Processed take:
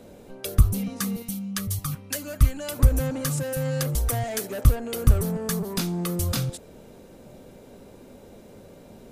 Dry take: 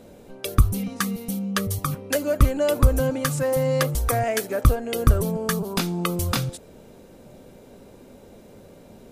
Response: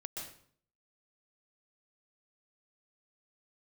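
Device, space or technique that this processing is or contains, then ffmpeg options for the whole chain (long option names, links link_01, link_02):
one-band saturation: -filter_complex "[0:a]asettb=1/sr,asplit=3[link_01][link_02][link_03];[link_01]atrim=end=1.224[link_04];[link_02]atrim=start=1.22:end=2.79,asetpts=PTS-STARTPTS,afade=type=in:duration=0.004:curve=qsin,afade=type=out:start_time=1.566:duration=0.004:curve=qsin,equalizer=frequency=460:width=0.86:gain=-14[link_05];[link_03]atrim=start=2.786[link_06];[link_04][link_05]acrossfade=duration=0.004:curve1=hsin:curve2=qsin[link_07];[link_07][link_06]acrossfade=duration=0.004:curve1=qsin:curve2=hsin,acrossover=split=220|4100[link_08][link_09][link_10];[link_09]asoftclip=type=tanh:threshold=-30dB[link_11];[link_08][link_11][link_10]amix=inputs=3:normalize=0"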